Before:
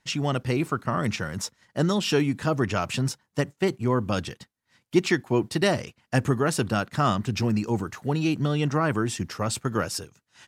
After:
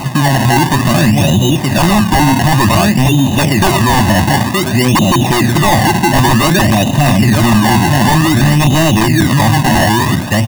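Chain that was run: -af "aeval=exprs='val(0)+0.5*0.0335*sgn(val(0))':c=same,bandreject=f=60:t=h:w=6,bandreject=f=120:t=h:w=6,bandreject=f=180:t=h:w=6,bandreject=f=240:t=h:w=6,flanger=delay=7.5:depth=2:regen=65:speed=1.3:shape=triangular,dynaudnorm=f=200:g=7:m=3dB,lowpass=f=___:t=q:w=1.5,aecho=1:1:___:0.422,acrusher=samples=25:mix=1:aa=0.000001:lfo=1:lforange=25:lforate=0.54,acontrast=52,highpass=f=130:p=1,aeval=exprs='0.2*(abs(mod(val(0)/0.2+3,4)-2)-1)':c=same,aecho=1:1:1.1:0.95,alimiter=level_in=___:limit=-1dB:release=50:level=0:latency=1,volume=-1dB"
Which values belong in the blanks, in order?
520, 922, 18.5dB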